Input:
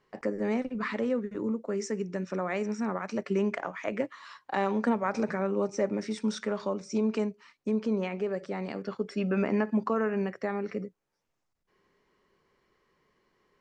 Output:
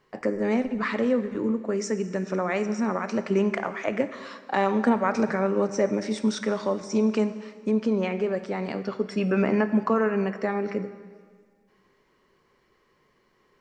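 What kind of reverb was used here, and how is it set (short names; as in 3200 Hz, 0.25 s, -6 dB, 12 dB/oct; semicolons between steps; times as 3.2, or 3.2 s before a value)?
plate-style reverb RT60 1.8 s, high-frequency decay 0.95×, DRR 11 dB; gain +5 dB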